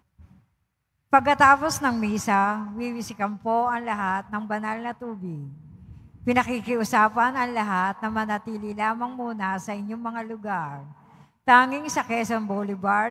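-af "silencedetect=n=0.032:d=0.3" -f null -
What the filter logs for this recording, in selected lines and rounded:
silence_start: 0.00
silence_end: 1.13 | silence_duration: 1.13
silence_start: 5.44
silence_end: 6.27 | silence_duration: 0.83
silence_start: 10.79
silence_end: 11.48 | silence_duration: 0.69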